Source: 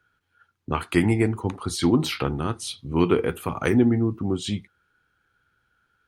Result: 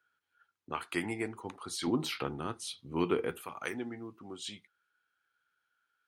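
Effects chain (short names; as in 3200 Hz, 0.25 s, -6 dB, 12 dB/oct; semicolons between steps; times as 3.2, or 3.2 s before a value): HPF 610 Hz 6 dB/oct, from 1.87 s 260 Hz, from 3.42 s 1200 Hz; gain -8 dB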